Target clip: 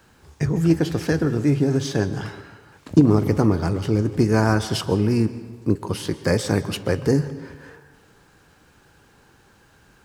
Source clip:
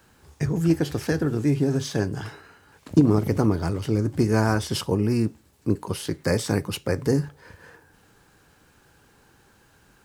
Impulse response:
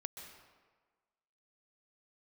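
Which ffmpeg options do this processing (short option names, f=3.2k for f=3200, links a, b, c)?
-filter_complex "[0:a]asplit=2[a][b];[1:a]atrim=start_sample=2205,lowpass=8.8k[c];[b][c]afir=irnorm=-1:irlink=0,volume=-1.5dB[d];[a][d]amix=inputs=2:normalize=0,volume=-1dB"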